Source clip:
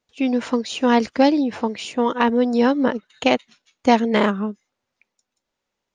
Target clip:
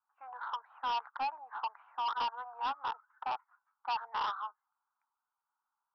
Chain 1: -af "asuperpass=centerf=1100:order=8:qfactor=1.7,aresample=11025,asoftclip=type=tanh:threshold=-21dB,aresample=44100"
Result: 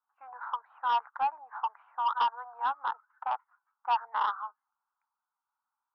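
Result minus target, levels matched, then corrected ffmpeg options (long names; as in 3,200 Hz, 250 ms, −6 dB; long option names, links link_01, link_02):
soft clipping: distortion −7 dB
-af "asuperpass=centerf=1100:order=8:qfactor=1.7,aresample=11025,asoftclip=type=tanh:threshold=-30.5dB,aresample=44100"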